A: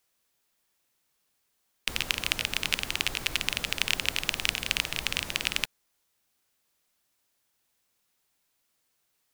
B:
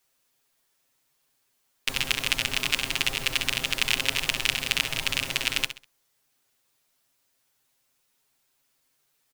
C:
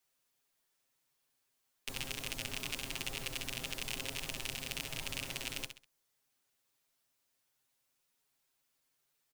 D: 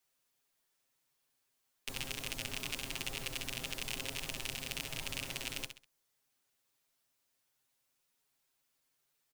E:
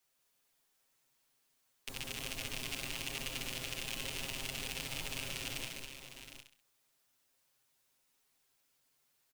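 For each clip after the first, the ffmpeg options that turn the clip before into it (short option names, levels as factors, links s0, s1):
-af "aecho=1:1:7.5:0.98,aecho=1:1:66|132|198:0.251|0.0754|0.0226"
-filter_complex "[0:a]acrossover=split=320|770|4700[s0][s1][s2][s3];[s2]alimiter=limit=0.188:level=0:latency=1:release=478[s4];[s0][s1][s4][s3]amix=inputs=4:normalize=0,asoftclip=type=tanh:threshold=0.158,volume=0.398"
-af anull
-filter_complex "[0:a]alimiter=level_in=1.78:limit=0.0631:level=0:latency=1:release=232,volume=0.562,asplit=2[s0][s1];[s1]aecho=0:1:148|200|404|718|756:0.398|0.531|0.237|0.237|0.282[s2];[s0][s2]amix=inputs=2:normalize=0,volume=1.19"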